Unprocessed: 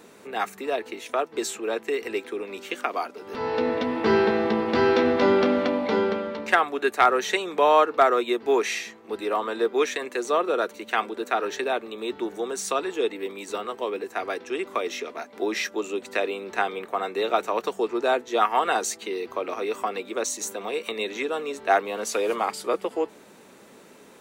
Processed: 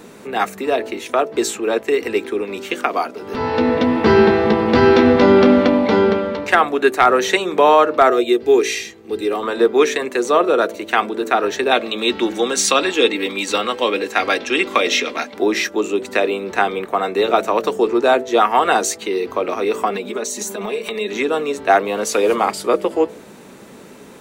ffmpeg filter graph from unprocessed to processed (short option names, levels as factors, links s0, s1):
-filter_complex "[0:a]asettb=1/sr,asplit=3[s0][s1][s2];[s0]atrim=end=8.104[s3];[s1]atrim=start=8.1:end=9.43,asetpts=PTS-STARTPTS,afade=t=in:d=0.004:c=qsin,afade=t=out:st=1.326:d=0.004:c=qsin,equalizer=f=1000:w=0.78:g=-10.5,aecho=1:1:2.5:0.36,atrim=end_sample=58653[s4];[s2]atrim=start=9.426[s5];[s3][s4]acrossfade=d=0.004:c1=hsin:c2=qsin[s6];[s6][s5]acrossfade=d=0.004:c1=qsin:c2=hsin,asettb=1/sr,asplit=3[s7][s8][s9];[s7]atrim=end=11.714[s10];[s8]atrim=start=11.71:end=15.34,asetpts=PTS-STARTPTS,afade=t=in:d=0.004:c=qsin,afade=t=out:st=3.626:d=0.004:c=qsin,equalizer=f=3500:t=o:w=2.3:g=10.5,aecho=1:1:3.7:0.38,atrim=end_sample=160083[s11];[s9]atrim=start=15.336[s12];[s10][s11]acrossfade=d=0.004:c1=hsin:c2=qsin[s13];[s13][s12]acrossfade=d=0.004:c1=qsin:c2=hsin,asettb=1/sr,asplit=3[s14][s15][s16];[s14]atrim=end=19.904[s17];[s15]atrim=start=19.9:end=21.13,asetpts=PTS-STARTPTS,afade=t=in:d=0.004:c=qsin,afade=t=out:st=1.226:d=0.004:c=qsin,acompressor=threshold=0.0282:ratio=5:attack=3.2:release=140:knee=1:detection=peak,aecho=1:1:4.8:0.73,atrim=end_sample=54243[s18];[s16]atrim=start=21.126[s19];[s17][s18]acrossfade=d=0.004:c1=hsin:c2=qsin[s20];[s20][s19]acrossfade=d=0.004:c1=qsin:c2=hsin,lowshelf=f=240:g=9.5,bandreject=f=55.23:t=h:w=4,bandreject=f=110.46:t=h:w=4,bandreject=f=165.69:t=h:w=4,bandreject=f=220.92:t=h:w=4,bandreject=f=276.15:t=h:w=4,bandreject=f=331.38:t=h:w=4,bandreject=f=386.61:t=h:w=4,bandreject=f=441.84:t=h:w=4,bandreject=f=497.07:t=h:w=4,bandreject=f=552.3:t=h:w=4,bandreject=f=607.53:t=h:w=4,bandreject=f=662.76:t=h:w=4,alimiter=level_in=2.66:limit=0.891:release=50:level=0:latency=1,volume=0.891"